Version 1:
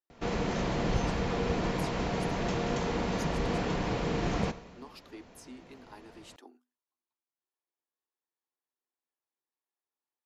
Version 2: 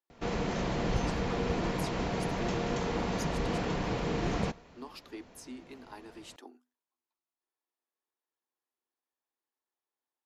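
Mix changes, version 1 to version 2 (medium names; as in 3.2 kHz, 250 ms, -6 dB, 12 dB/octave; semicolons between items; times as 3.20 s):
speech +3.0 dB; background: send -10.5 dB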